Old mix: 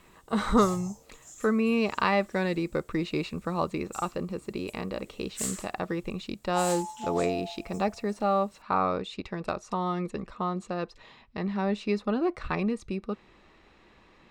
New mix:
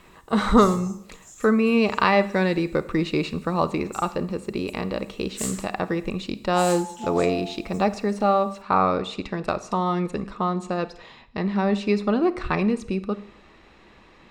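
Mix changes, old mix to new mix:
speech +3.0 dB; reverb: on, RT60 0.70 s

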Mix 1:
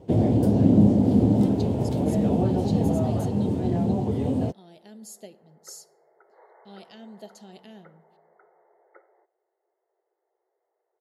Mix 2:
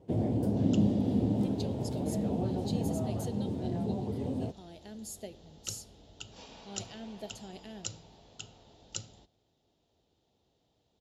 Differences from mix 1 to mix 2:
first sound -9.5 dB; second sound: remove brick-wall FIR band-pass 340–2200 Hz

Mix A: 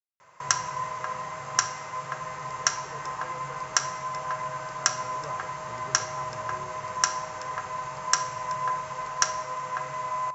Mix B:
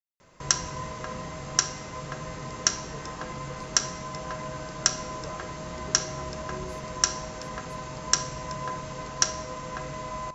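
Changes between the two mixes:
speech: remove low-pass 1.5 kHz; first sound: remove high-pass 590 Hz 6 dB/octave; master: add graphic EQ 125/250/1000/2000/4000 Hz -10/+9/-8/-3/+5 dB

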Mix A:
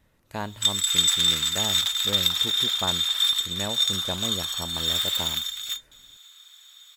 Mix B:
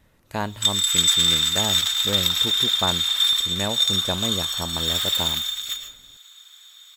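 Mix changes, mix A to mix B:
speech +5.0 dB; reverb: on, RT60 0.40 s

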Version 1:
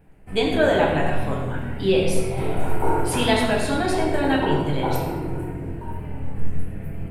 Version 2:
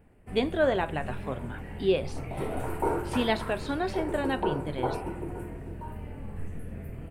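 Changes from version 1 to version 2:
speech: add distance through air 120 m; reverb: off

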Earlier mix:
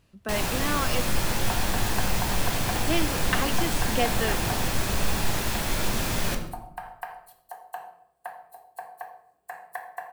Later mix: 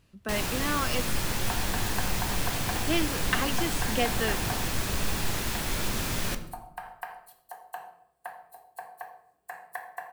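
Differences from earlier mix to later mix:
first sound: send -6.0 dB; master: add peaking EQ 680 Hz -3 dB 1.1 oct

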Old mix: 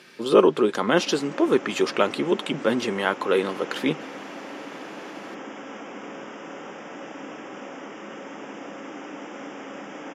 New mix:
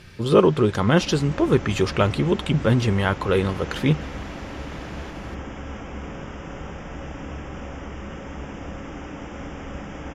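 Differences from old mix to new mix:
first sound +8.0 dB; master: remove high-pass 240 Hz 24 dB/octave

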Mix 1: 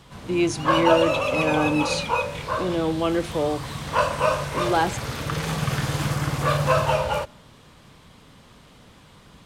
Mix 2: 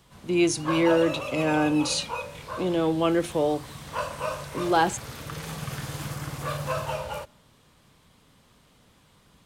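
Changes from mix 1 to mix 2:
background -9.5 dB; master: add treble shelf 8.6 kHz +9.5 dB

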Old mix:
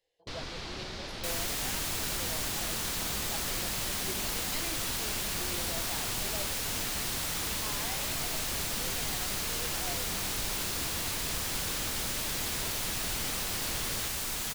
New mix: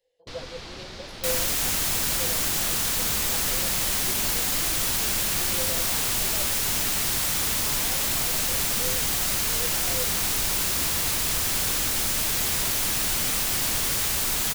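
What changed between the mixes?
speech: add peaking EQ 510 Hz +13.5 dB 0.2 oct; second sound +7.5 dB; master: add treble shelf 10 kHz +4 dB

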